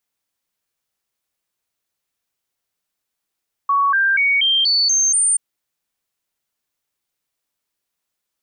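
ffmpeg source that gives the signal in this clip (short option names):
-f lavfi -i "aevalsrc='0.224*clip(min(mod(t,0.24),0.24-mod(t,0.24))/0.005,0,1)*sin(2*PI*1120*pow(2,floor(t/0.24)/2)*mod(t,0.24))':d=1.68:s=44100"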